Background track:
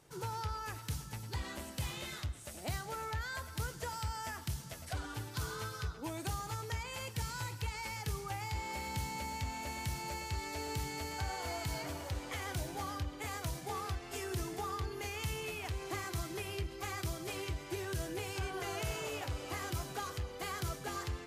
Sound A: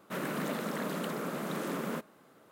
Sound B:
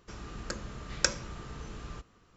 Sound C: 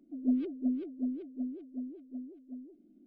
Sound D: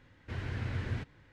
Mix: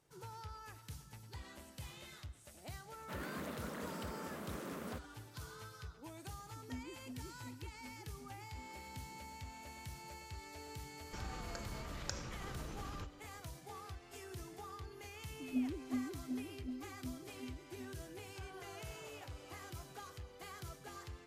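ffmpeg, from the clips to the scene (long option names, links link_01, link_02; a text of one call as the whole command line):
ffmpeg -i bed.wav -i cue0.wav -i cue1.wav -i cue2.wav -filter_complex "[3:a]asplit=2[link_01][link_02];[0:a]volume=-10.5dB[link_03];[link_01]aecho=1:1:5.6:0.54[link_04];[2:a]acompressor=threshold=-45dB:ratio=10:attack=17:release=39:knee=1:detection=peak[link_05];[1:a]atrim=end=2.51,asetpts=PTS-STARTPTS,volume=-10dB,afade=type=in:duration=0.004:curve=hsin,afade=type=out:start_time=2.506:duration=0.004:curve=hsin,adelay=2980[link_06];[link_04]atrim=end=3.06,asetpts=PTS-STARTPTS,volume=-15.5dB,afade=type=in:duration=0.004:curve=hsin,afade=type=out:start_time=3.056:duration=0.004:curve=hsin,adelay=6440[link_07];[link_05]atrim=end=2.36,asetpts=PTS-STARTPTS,volume=-1.5dB,afade=type=in:duration=0.004:curve=hsin,afade=type=out:start_time=2.356:duration=0.004:curve=hsin,adelay=11050[link_08];[link_02]atrim=end=3.06,asetpts=PTS-STARTPTS,volume=-8dB,afade=type=in:duration=0.004:curve=hsin,afade=type=out:start_time=3.056:duration=0.004:curve=hsin,adelay=15280[link_09];[link_03][link_06][link_07][link_08][link_09]amix=inputs=5:normalize=0" out.wav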